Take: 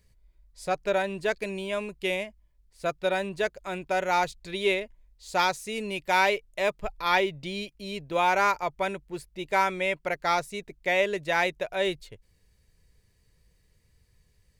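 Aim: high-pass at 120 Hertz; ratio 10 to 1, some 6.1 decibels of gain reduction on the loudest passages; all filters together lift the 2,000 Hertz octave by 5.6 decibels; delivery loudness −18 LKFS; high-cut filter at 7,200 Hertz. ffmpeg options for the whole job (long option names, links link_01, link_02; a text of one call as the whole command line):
ffmpeg -i in.wav -af "highpass=120,lowpass=7200,equalizer=frequency=2000:width_type=o:gain=7,acompressor=threshold=-21dB:ratio=10,volume=10.5dB" out.wav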